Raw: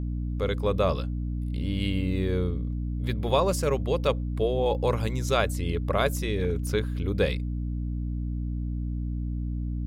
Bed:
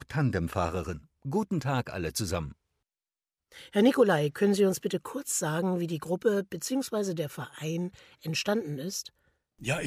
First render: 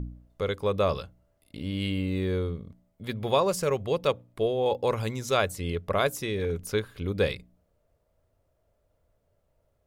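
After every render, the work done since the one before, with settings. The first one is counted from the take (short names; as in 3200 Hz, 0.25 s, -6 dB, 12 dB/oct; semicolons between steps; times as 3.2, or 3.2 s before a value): de-hum 60 Hz, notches 5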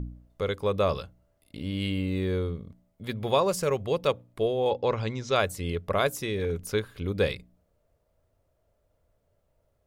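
4.7–5.36 LPF 5700 Hz 24 dB/oct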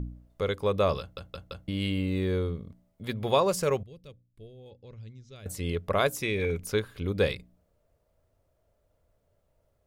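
1 stutter in place 0.17 s, 4 plays; 3.83–5.46 passive tone stack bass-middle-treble 10-0-1; 6.2–6.65 bell 2300 Hz +12.5 dB 0.22 oct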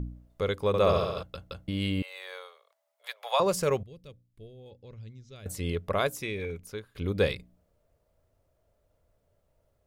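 0.67–1.23 flutter echo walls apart 11.7 m, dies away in 1.2 s; 2.02–3.4 steep high-pass 590 Hz 48 dB/oct; 5.66–6.95 fade out, to -16 dB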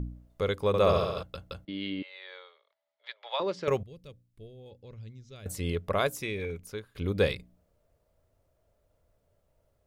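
1.65–3.68 speaker cabinet 300–4000 Hz, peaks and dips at 310 Hz +3 dB, 490 Hz -7 dB, 720 Hz -9 dB, 1100 Hz -8 dB, 1500 Hz -4 dB, 2600 Hz -6 dB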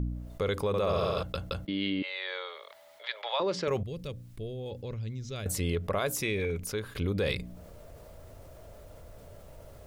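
limiter -21 dBFS, peak gain reduction 8.5 dB; fast leveller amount 50%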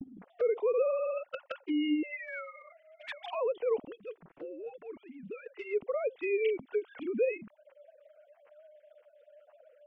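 sine-wave speech; envelope flanger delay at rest 10.5 ms, full sweep at -29.5 dBFS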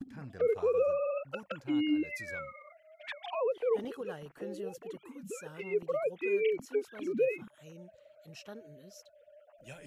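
add bed -19.5 dB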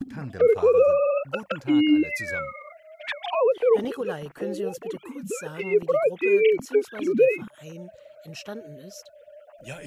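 gain +10.5 dB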